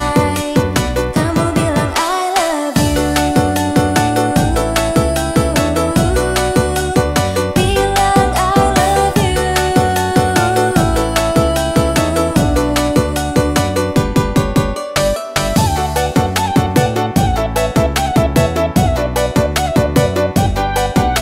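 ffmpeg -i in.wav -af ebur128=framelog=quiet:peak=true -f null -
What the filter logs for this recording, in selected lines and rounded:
Integrated loudness:
  I:         -14.3 LUFS
  Threshold: -24.3 LUFS
Loudness range:
  LRA:         1.9 LU
  Threshold: -34.2 LUFS
  LRA low:   -15.0 LUFS
  LRA high:  -13.2 LUFS
True peak:
  Peak:       -1.5 dBFS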